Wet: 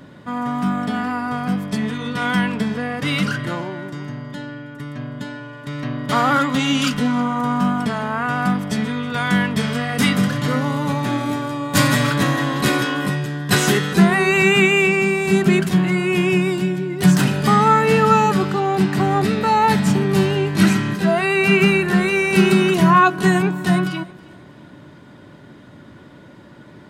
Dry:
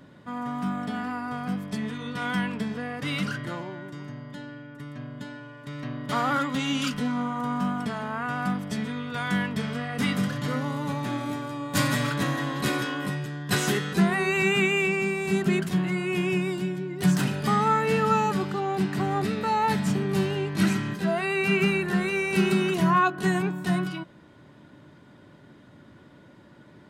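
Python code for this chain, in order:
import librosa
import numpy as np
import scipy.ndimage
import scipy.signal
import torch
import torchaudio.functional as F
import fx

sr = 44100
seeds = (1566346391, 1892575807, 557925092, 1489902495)

p1 = fx.high_shelf(x, sr, hz=4100.0, db=6.5, at=(9.57, 10.09))
p2 = p1 + fx.echo_feedback(p1, sr, ms=321, feedback_pct=38, wet_db=-23.0, dry=0)
y = F.gain(torch.from_numpy(p2), 8.5).numpy()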